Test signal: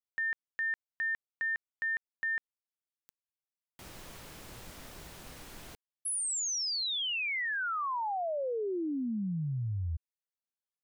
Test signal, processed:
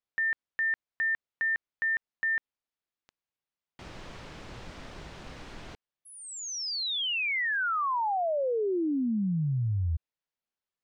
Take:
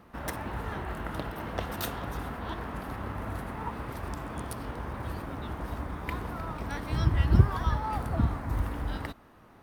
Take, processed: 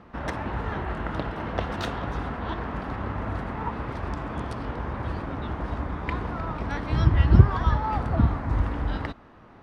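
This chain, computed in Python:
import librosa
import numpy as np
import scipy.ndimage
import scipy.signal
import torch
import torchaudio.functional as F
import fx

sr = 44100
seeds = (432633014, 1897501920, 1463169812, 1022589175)

y = fx.air_absorb(x, sr, metres=130.0)
y = F.gain(torch.from_numpy(y), 5.5).numpy()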